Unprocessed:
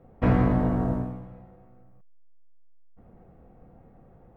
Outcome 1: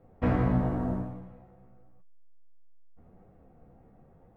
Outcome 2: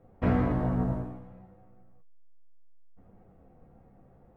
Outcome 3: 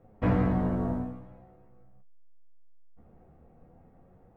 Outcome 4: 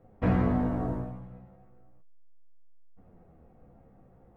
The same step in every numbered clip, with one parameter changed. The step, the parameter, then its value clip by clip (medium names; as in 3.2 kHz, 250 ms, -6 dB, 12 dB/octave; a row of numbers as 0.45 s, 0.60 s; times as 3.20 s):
flange, rate: 0.91 Hz, 0.62 Hz, 0.21 Hz, 0.37 Hz